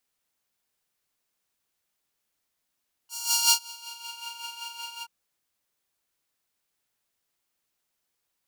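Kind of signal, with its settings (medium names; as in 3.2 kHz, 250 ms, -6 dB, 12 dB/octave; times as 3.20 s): synth patch with tremolo A#5, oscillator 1 triangle, oscillator 2 saw, interval +7 st, oscillator 2 level -12.5 dB, sub -21 dB, noise -27 dB, filter highpass, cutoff 1.6 kHz, Q 1.2, filter envelope 2 oct, filter decay 1.18 s, attack 412 ms, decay 0.09 s, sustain -24 dB, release 0.05 s, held 1.93 s, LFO 5.3 Hz, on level 8 dB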